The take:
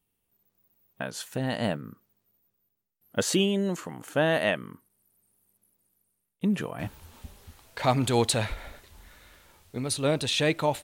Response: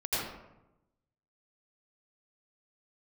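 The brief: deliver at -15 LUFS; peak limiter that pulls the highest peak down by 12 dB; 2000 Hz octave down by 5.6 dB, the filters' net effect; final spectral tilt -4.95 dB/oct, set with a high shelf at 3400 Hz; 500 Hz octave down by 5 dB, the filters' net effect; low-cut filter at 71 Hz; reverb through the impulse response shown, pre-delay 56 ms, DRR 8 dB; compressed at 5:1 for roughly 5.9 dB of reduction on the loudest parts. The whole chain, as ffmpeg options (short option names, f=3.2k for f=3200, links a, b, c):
-filter_complex "[0:a]highpass=71,equalizer=f=500:t=o:g=-6,equalizer=f=2k:t=o:g=-4.5,highshelf=f=3.4k:g=-7.5,acompressor=threshold=-28dB:ratio=5,alimiter=level_in=5.5dB:limit=-24dB:level=0:latency=1,volume=-5.5dB,asplit=2[a][b];[1:a]atrim=start_sample=2205,adelay=56[c];[b][c]afir=irnorm=-1:irlink=0,volume=-16dB[d];[a][d]amix=inputs=2:normalize=0,volume=25dB"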